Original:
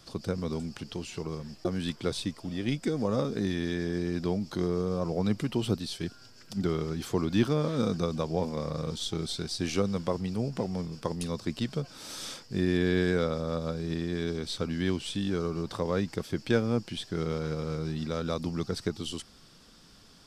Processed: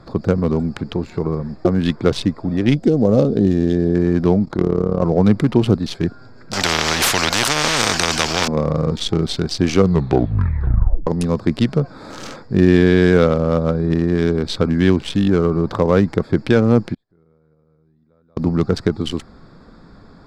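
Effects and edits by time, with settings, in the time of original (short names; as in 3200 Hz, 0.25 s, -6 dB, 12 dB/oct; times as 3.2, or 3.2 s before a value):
2.74–3.95 band shelf 1500 Hz -10.5 dB
4.45–5.02 AM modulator 36 Hz, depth 75%
6.53–8.48 spectral compressor 10:1
9.78 tape stop 1.29 s
16.94–18.37 flipped gate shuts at -37 dBFS, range -40 dB
whole clip: Wiener smoothing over 15 samples; high shelf 8100 Hz -11.5 dB; maximiser +16 dB; gain -1 dB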